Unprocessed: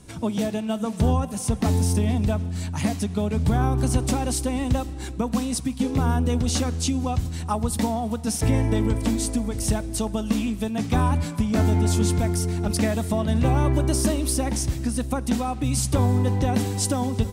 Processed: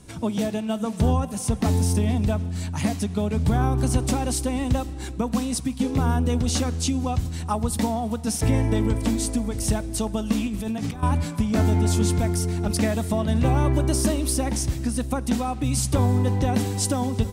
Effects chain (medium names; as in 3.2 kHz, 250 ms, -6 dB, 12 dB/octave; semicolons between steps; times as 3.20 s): 10.47–11.03 s: compressor with a negative ratio -29 dBFS, ratio -1